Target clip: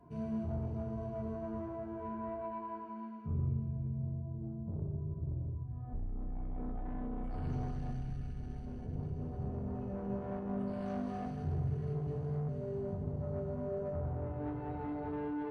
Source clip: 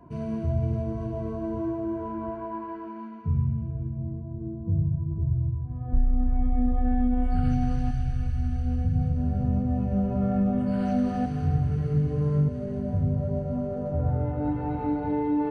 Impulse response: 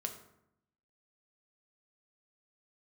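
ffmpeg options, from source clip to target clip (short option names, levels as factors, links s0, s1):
-filter_complex "[0:a]asoftclip=type=tanh:threshold=0.0562[s0];[1:a]atrim=start_sample=2205,afade=t=out:st=0.21:d=0.01,atrim=end_sample=9702[s1];[s0][s1]afir=irnorm=-1:irlink=0,volume=0.422"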